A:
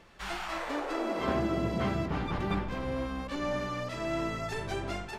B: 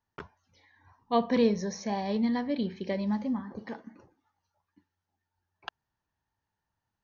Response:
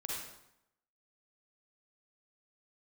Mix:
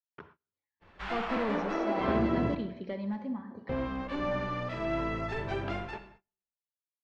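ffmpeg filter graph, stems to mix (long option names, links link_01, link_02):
-filter_complex "[0:a]adelay=800,volume=-1dB,asplit=3[link_01][link_02][link_03];[link_01]atrim=end=2.55,asetpts=PTS-STARTPTS,afade=type=out:start_time=2.546:duration=0.004:curve=hsin[link_04];[link_02]atrim=start=2.55:end=3.69,asetpts=PTS-STARTPTS,volume=0[link_05];[link_03]atrim=start=3.69,asetpts=PTS-STARTPTS,afade=type=in:duration=0.004:curve=hsin[link_06];[link_04][link_05][link_06]concat=n=3:v=0:a=1,asplit=2[link_07][link_08];[link_08]volume=-8.5dB[link_09];[1:a]highpass=100,asoftclip=type=hard:threshold=-23.5dB,volume=-7dB,asplit=2[link_10][link_11];[link_11]volume=-7.5dB[link_12];[2:a]atrim=start_sample=2205[link_13];[link_09][link_12]amix=inputs=2:normalize=0[link_14];[link_14][link_13]afir=irnorm=-1:irlink=0[link_15];[link_07][link_10][link_15]amix=inputs=3:normalize=0,agate=range=-28dB:threshold=-56dB:ratio=16:detection=peak,lowpass=3000"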